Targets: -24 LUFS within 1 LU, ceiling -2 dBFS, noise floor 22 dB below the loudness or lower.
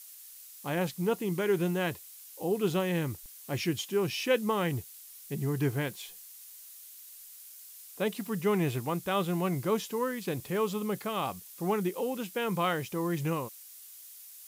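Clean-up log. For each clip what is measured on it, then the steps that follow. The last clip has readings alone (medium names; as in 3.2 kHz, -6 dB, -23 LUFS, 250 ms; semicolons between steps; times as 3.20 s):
noise floor -50 dBFS; noise floor target -54 dBFS; loudness -31.5 LUFS; peak level -15.5 dBFS; loudness target -24.0 LUFS
-> noise reduction 6 dB, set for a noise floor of -50 dBFS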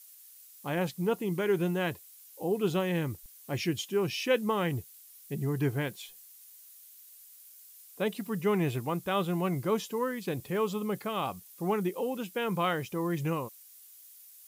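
noise floor -54 dBFS; loudness -31.5 LUFS; peak level -15.5 dBFS; loudness target -24.0 LUFS
-> trim +7.5 dB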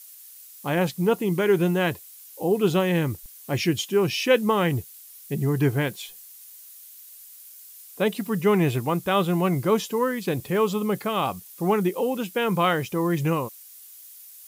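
loudness -24.0 LUFS; peak level -8.0 dBFS; noise floor -46 dBFS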